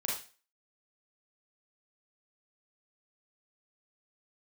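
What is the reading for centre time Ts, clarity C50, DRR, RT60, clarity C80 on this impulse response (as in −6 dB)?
42 ms, 2.5 dB, −4.0 dB, 0.35 s, 9.0 dB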